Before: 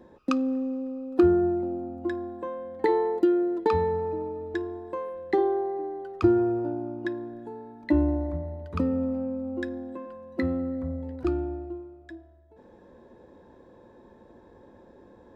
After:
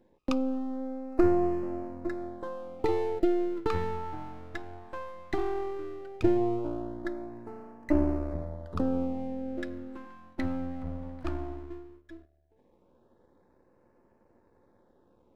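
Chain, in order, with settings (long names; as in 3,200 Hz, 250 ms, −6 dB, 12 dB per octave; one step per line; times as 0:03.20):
gain on one half-wave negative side −12 dB
auto-filter notch sine 0.16 Hz 390–3,600 Hz
noise gate −51 dBFS, range −9 dB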